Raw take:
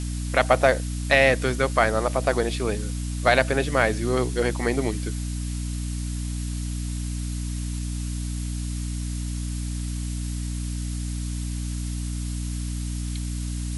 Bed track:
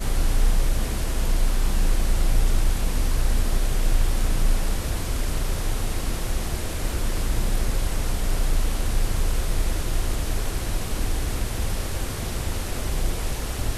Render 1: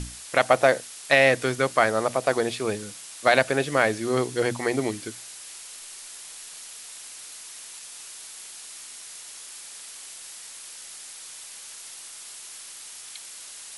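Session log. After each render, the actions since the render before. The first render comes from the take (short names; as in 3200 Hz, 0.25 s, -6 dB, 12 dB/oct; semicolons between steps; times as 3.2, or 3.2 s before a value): notches 60/120/180/240/300 Hz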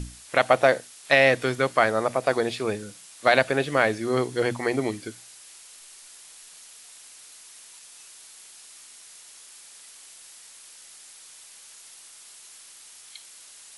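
noise print and reduce 6 dB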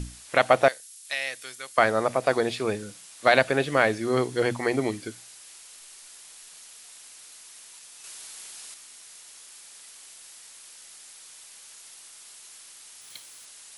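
0.68–1.78 pre-emphasis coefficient 0.97; 8.04–8.74 gain +5 dB; 13.01–13.47 block floating point 3-bit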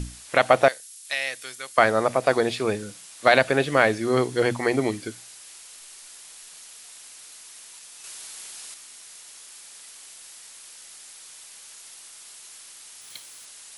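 gain +2.5 dB; limiter -2 dBFS, peak gain reduction 2 dB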